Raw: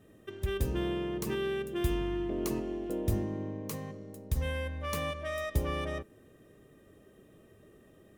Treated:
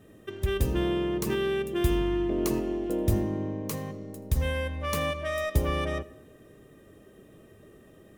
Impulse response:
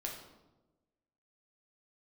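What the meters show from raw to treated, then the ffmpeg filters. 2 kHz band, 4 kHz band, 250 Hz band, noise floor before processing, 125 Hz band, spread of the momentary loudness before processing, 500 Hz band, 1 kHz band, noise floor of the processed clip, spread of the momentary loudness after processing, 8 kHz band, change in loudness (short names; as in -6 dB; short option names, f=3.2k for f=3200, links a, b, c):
+5.0 dB, +5.0 dB, +5.5 dB, -60 dBFS, +5.0 dB, 8 LU, +5.5 dB, +5.0 dB, -55 dBFS, 8 LU, +5.0 dB, +5.5 dB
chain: -filter_complex "[0:a]asplit=2[a][b];[1:a]atrim=start_sample=2205,adelay=80[c];[b][c]afir=irnorm=-1:irlink=0,volume=-18.5dB[d];[a][d]amix=inputs=2:normalize=0,volume=5dB"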